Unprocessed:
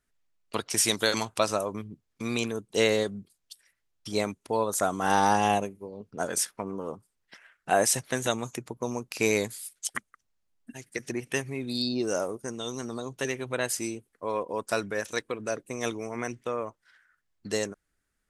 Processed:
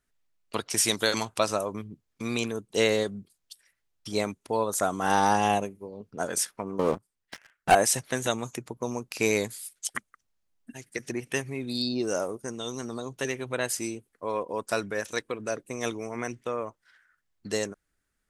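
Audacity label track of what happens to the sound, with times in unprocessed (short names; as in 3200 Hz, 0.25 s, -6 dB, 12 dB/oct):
6.790000	7.750000	sample leveller passes 3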